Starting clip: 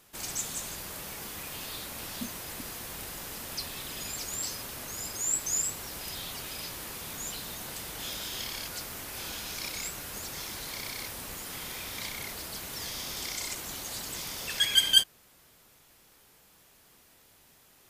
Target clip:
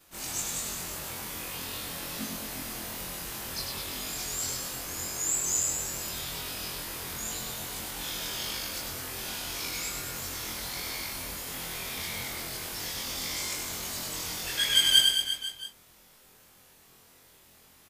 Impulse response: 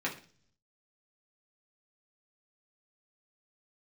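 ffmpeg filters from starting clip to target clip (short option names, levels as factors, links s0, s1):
-af "afftfilt=real='re':imag='-im':win_size=2048:overlap=0.75,aecho=1:1:100|215|347.2|499.3|674.2:0.631|0.398|0.251|0.158|0.1,volume=1.68"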